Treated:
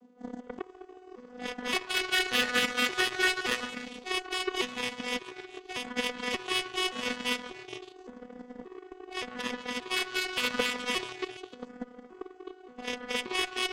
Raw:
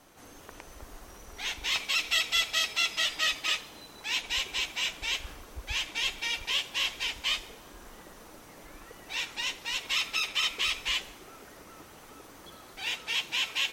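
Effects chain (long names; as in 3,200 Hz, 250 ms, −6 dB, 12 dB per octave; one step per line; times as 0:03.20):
vocoder with an arpeggio as carrier bare fifth, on B3, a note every 576 ms
dynamic equaliser 1,600 Hz, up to +4 dB, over −50 dBFS, Q 3
reversed playback
upward compression, threshold −47 dBFS
reversed playback
hollow resonant body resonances 200/430 Hz, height 15 dB, ringing for 20 ms
on a send: echo through a band-pass that steps 141 ms, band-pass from 1,100 Hz, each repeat 0.7 octaves, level −1 dB
on the sum: harmonic generator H 4 −32 dB, 7 −18 dB, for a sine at −12 dBFS
level −1.5 dB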